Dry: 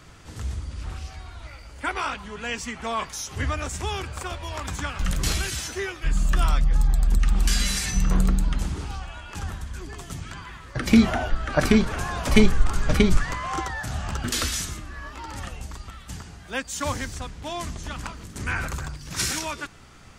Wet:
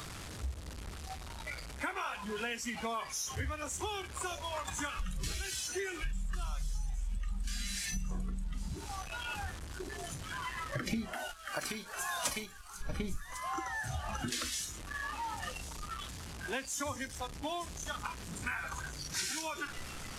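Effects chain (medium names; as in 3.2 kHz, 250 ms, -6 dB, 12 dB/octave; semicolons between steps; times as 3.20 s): one-bit delta coder 64 kbps, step -27 dBFS; spectral noise reduction 12 dB; compression 8:1, threshold -34 dBFS, peak gain reduction 24 dB; 11.13–12.81 s: tilt EQ +3.5 dB/octave; on a send: feedback echo behind a high-pass 1102 ms, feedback 57%, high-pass 4.3 kHz, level -12.5 dB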